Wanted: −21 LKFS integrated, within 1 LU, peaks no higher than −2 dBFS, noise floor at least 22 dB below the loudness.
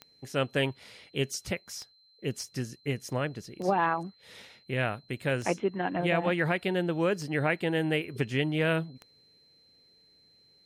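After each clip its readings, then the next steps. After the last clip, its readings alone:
number of clicks 6; interfering tone 4,100 Hz; level of the tone −60 dBFS; integrated loudness −30.5 LKFS; sample peak −15.0 dBFS; target loudness −21.0 LKFS
→ click removal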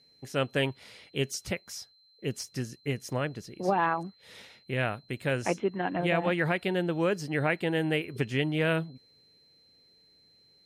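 number of clicks 0; interfering tone 4,100 Hz; level of the tone −60 dBFS
→ notch filter 4,100 Hz, Q 30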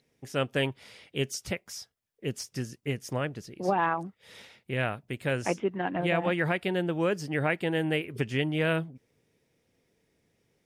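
interfering tone none found; integrated loudness −30.5 LKFS; sample peak −15.0 dBFS; target loudness −21.0 LKFS
→ level +9.5 dB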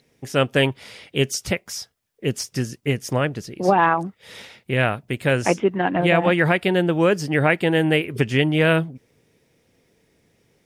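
integrated loudness −21.0 LKFS; sample peak −5.5 dBFS; background noise floor −65 dBFS

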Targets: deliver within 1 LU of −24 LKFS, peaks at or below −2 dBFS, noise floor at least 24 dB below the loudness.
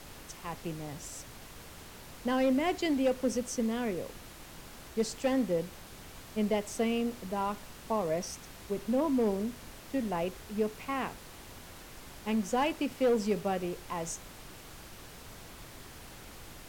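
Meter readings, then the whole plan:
share of clipped samples 0.3%; peaks flattened at −21.0 dBFS; background noise floor −50 dBFS; target noise floor −57 dBFS; integrated loudness −32.5 LKFS; sample peak −21.0 dBFS; target loudness −24.0 LKFS
→ clipped peaks rebuilt −21 dBFS
noise reduction from a noise print 7 dB
level +8.5 dB

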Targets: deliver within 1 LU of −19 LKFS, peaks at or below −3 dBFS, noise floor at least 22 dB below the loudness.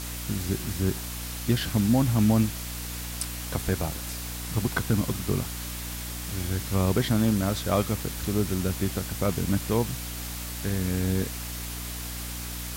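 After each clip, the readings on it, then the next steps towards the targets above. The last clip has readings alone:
mains hum 60 Hz; hum harmonics up to 300 Hz; level of the hum −35 dBFS; background noise floor −35 dBFS; target noise floor −50 dBFS; integrated loudness −28.0 LKFS; sample peak −11.0 dBFS; target loudness −19.0 LKFS
→ mains-hum notches 60/120/180/240/300 Hz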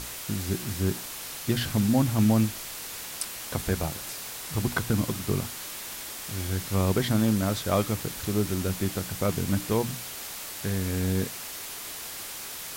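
mains hum none found; background noise floor −38 dBFS; target noise floor −51 dBFS
→ broadband denoise 13 dB, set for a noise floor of −38 dBFS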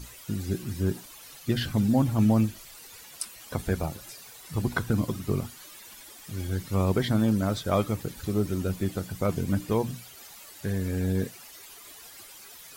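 background noise floor −48 dBFS; target noise floor −51 dBFS
→ broadband denoise 6 dB, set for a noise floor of −48 dBFS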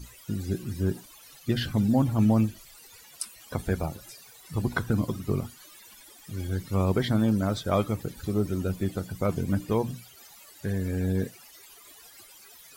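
background noise floor −52 dBFS; integrated loudness −28.5 LKFS; sample peak −11.5 dBFS; target loudness −19.0 LKFS
→ level +9.5 dB
brickwall limiter −3 dBFS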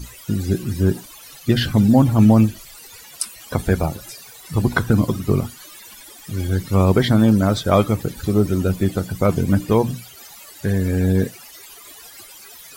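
integrated loudness −19.0 LKFS; sample peak −3.0 dBFS; background noise floor −42 dBFS

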